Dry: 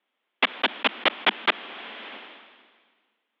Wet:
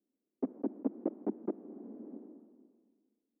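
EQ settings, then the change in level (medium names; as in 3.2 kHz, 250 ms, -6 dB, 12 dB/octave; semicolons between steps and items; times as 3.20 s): four-pole ladder low-pass 360 Hz, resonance 40%; dynamic bell 230 Hz, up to -5 dB, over -53 dBFS, Q 1.1; +10.0 dB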